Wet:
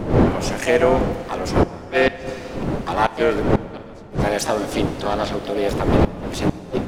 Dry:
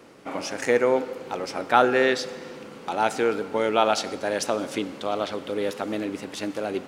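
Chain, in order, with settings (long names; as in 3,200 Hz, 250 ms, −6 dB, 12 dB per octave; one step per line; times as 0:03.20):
wind on the microphone 370 Hz −22 dBFS
gate with flip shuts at −8 dBFS, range −33 dB
pitch-shifted copies added +5 semitones −6 dB
dense smooth reverb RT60 2.6 s, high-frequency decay 0.95×, DRR 14 dB
level +3.5 dB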